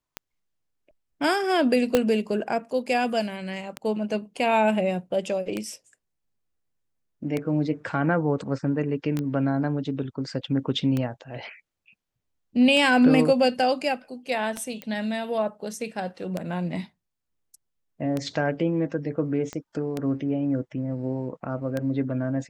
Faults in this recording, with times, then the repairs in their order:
tick 33 1/3 rpm -14 dBFS
1.95 pop -6 dBFS
9.19 pop -17 dBFS
14.82 pop -19 dBFS
19.53 pop -20 dBFS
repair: de-click

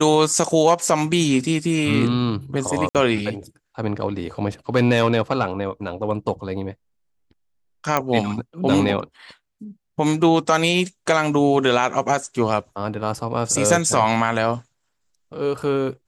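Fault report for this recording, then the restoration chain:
2.89–2.95 gap 57 ms
7.97 pop -6 dBFS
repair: de-click; interpolate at 2.89, 57 ms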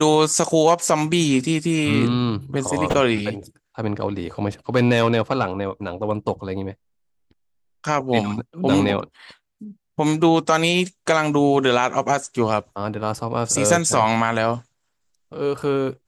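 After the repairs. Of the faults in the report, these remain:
none

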